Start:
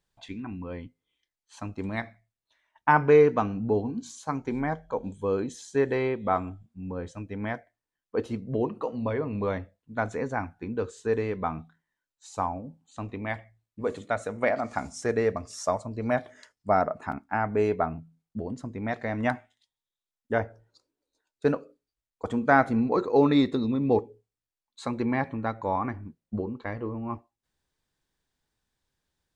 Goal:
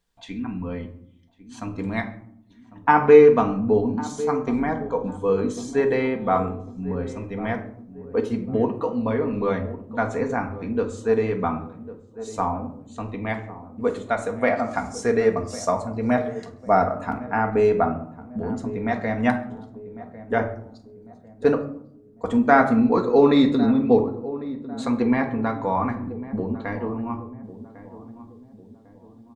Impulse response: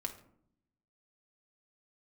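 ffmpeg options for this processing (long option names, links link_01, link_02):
-filter_complex "[0:a]asplit=2[link_01][link_02];[link_02]adelay=1100,lowpass=frequency=820:poles=1,volume=-14dB,asplit=2[link_03][link_04];[link_04]adelay=1100,lowpass=frequency=820:poles=1,volume=0.48,asplit=2[link_05][link_06];[link_06]adelay=1100,lowpass=frequency=820:poles=1,volume=0.48,asplit=2[link_07][link_08];[link_08]adelay=1100,lowpass=frequency=820:poles=1,volume=0.48,asplit=2[link_09][link_10];[link_10]adelay=1100,lowpass=frequency=820:poles=1,volume=0.48[link_11];[link_01][link_03][link_05][link_07][link_09][link_11]amix=inputs=6:normalize=0[link_12];[1:a]atrim=start_sample=2205[link_13];[link_12][link_13]afir=irnorm=-1:irlink=0,volume=5dB"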